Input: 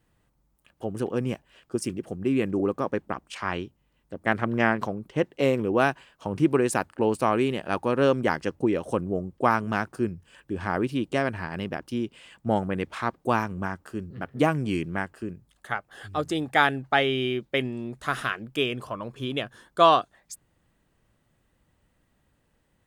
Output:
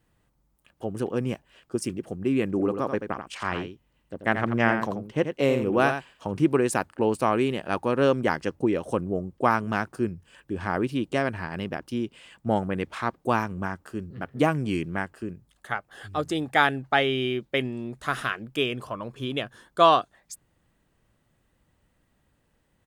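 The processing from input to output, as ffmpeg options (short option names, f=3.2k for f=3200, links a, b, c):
-filter_complex "[0:a]asplit=3[a][b][c];[a]afade=t=out:st=2.55:d=0.02[d];[b]aecho=1:1:86:0.398,afade=t=in:st=2.55:d=0.02,afade=t=out:st=6.3:d=0.02[e];[c]afade=t=in:st=6.3:d=0.02[f];[d][e][f]amix=inputs=3:normalize=0"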